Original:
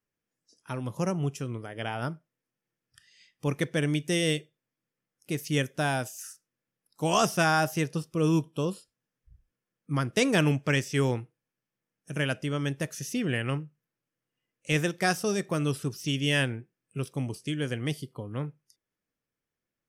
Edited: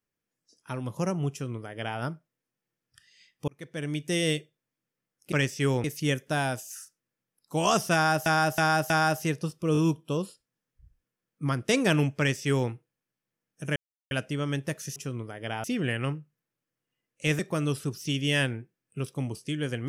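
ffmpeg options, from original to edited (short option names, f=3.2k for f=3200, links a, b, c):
-filter_complex "[0:a]asplit=13[a][b][c][d][e][f][g][h][i][j][k][l][m];[a]atrim=end=3.48,asetpts=PTS-STARTPTS,afade=t=out:st=3.476:d=0.004:c=hsin[n];[b]atrim=start=3.48:end=5.322,asetpts=PTS-STARTPTS,afade=t=in:d=0.72[o];[c]atrim=start=10.658:end=11.182[p];[d]atrim=start=5.318:end=7.742[q];[e]atrim=start=7.418:end=7.742[r];[f]atrim=start=7.418:end=7.742[s];[g]atrim=start=7.418:end=8.272[t];[h]atrim=start=8.248:end=8.272[u];[i]atrim=start=8.248:end=12.24,asetpts=PTS-STARTPTS,afade=t=out:st=3.988:d=0.004:c=hsin,apad=pad_dur=0.35[v];[j]atrim=start=12.24:end=13.092,asetpts=PTS-STARTPTS,afade=t=in:d=0.004:c=hsin[w];[k]atrim=start=1.308:end=1.992[x];[l]atrim=start=13.088:end=14.842[y];[m]atrim=start=15.378[z];[n][o]concat=n=2:v=0:a=1[aa];[aa][p]acrossfade=d=0.004:c1=hsin:c2=hsin[ab];[ab][q]acrossfade=d=0.004:c1=hsin:c2=hsin[ac];[ac][r]acrossfade=d=0.004:c1=hsin:c2=hsin[ad];[ad][s]acrossfade=d=0.004:c1=hsin:c2=hsin[ae];[ae][t]acrossfade=d=0.004:c1=hsin:c2=hsin[af];[af][u]acrossfade=d=0.004:c1=hsin:c2=hsin[ag];[v][w]concat=n=2:v=0:a=1[ah];[ag][ah]acrossfade=d=0.004:c1=hsin:c2=hsin[ai];[ai][x]acrossfade=d=0.004:c1=hsin:c2=hsin[aj];[aj][y]acrossfade=d=0.004:c1=hsin:c2=hsin[ak];[ak][z]acrossfade=d=0.004:c1=hsin:c2=hsin"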